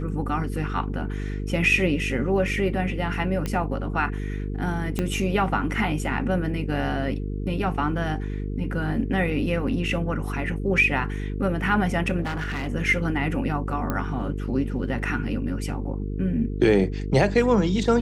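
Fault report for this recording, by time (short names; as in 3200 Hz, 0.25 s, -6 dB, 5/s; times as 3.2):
buzz 50 Hz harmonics 9 -29 dBFS
3.46 pop -14 dBFS
4.99 pop -12 dBFS
12.21–12.68 clipped -25 dBFS
13.9 pop -13 dBFS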